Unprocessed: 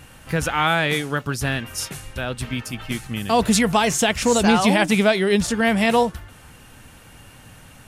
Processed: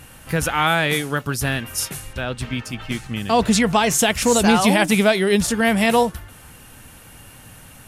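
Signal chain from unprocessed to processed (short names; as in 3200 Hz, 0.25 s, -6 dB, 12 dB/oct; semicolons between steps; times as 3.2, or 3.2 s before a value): bell 12000 Hz +7 dB 0.77 oct, from 2.13 s -6.5 dB, from 3.91 s +8 dB; gain +1 dB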